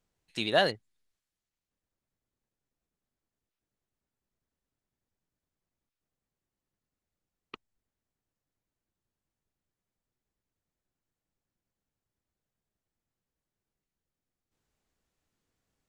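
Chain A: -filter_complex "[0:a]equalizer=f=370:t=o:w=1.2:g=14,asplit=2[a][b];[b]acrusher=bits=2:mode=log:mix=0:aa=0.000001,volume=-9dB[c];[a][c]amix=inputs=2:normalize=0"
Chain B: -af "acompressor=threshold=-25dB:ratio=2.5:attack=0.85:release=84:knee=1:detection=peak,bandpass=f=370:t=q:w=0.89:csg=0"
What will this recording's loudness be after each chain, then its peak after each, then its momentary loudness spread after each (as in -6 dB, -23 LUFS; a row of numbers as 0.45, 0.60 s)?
-20.0, -38.0 LUFS; -2.5, -23.0 dBFS; 16, 14 LU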